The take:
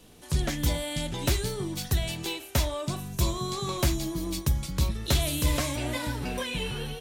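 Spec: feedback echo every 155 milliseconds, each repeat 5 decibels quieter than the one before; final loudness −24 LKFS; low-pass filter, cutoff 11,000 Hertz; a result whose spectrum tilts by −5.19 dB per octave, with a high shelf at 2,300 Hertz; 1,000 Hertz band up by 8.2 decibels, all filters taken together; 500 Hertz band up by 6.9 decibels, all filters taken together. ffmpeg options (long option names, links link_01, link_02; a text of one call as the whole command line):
ffmpeg -i in.wav -af "lowpass=11000,equalizer=frequency=500:width_type=o:gain=6.5,equalizer=frequency=1000:width_type=o:gain=8.5,highshelf=frequency=2300:gain=-3,aecho=1:1:155|310|465|620|775|930|1085:0.562|0.315|0.176|0.0988|0.0553|0.031|0.0173,volume=2dB" out.wav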